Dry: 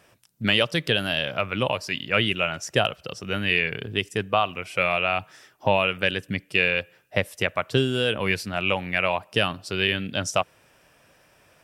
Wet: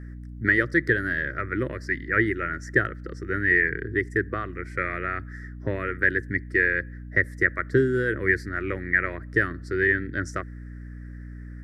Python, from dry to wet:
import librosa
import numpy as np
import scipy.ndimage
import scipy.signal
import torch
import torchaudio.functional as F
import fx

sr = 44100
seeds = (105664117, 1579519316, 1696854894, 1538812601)

y = fx.curve_eq(x, sr, hz=(120.0, 200.0, 340.0, 860.0, 1300.0, 1900.0, 2700.0, 4400.0, 7400.0, 14000.0), db=(0, -9, 9, -26, -1, 12, -30, -13, -12, -18))
y = fx.add_hum(y, sr, base_hz=60, snr_db=12)